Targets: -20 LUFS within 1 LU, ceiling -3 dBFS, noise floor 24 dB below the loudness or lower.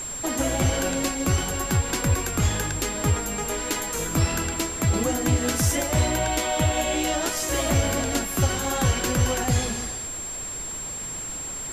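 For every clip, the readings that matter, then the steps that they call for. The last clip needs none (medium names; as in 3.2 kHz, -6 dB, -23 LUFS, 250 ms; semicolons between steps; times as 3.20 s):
steady tone 7.5 kHz; tone level -31 dBFS; noise floor -33 dBFS; noise floor target -49 dBFS; loudness -24.5 LUFS; peak level -10.5 dBFS; loudness target -20.0 LUFS
-> band-stop 7.5 kHz, Q 30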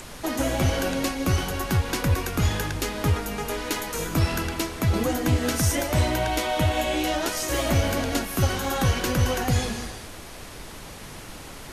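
steady tone not found; noise floor -41 dBFS; noise floor target -49 dBFS
-> noise print and reduce 8 dB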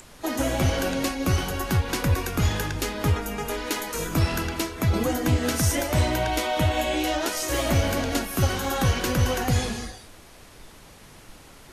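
noise floor -48 dBFS; noise floor target -49 dBFS
-> noise print and reduce 6 dB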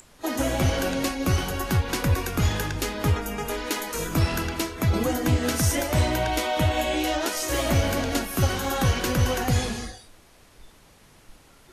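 noise floor -54 dBFS; loudness -25.0 LUFS; peak level -11.0 dBFS; loudness target -20.0 LUFS
-> trim +5 dB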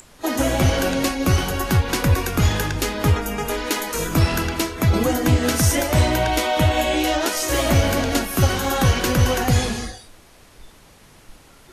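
loudness -20.0 LUFS; peak level -6.0 dBFS; noise floor -49 dBFS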